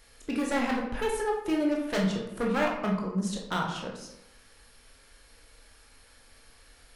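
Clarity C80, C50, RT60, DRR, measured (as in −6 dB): 7.5 dB, 3.5 dB, 0.90 s, −1.5 dB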